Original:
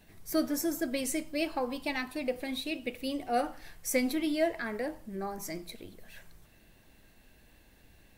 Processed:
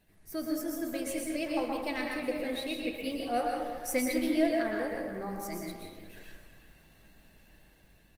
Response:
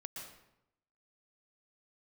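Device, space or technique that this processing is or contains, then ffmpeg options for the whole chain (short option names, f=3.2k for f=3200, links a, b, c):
speakerphone in a meeting room: -filter_complex "[1:a]atrim=start_sample=2205[a];[0:a][a]afir=irnorm=-1:irlink=0,asplit=2[b][c];[c]adelay=360,highpass=300,lowpass=3.4k,asoftclip=type=hard:threshold=-27dB,volume=-10dB[d];[b][d]amix=inputs=2:normalize=0,dynaudnorm=f=350:g=7:m=6dB,volume=-2dB" -ar 48000 -c:a libopus -b:a 32k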